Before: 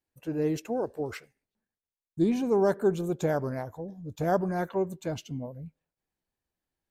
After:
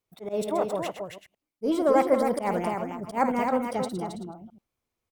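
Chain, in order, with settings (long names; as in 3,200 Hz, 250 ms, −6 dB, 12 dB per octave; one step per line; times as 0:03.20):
delay that plays each chunk backwards 112 ms, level −9.5 dB
on a send: single-tap delay 365 ms −6 dB
on the sum: volume swells 143 ms
wrong playback speed 33 rpm record played at 45 rpm
level +2.5 dB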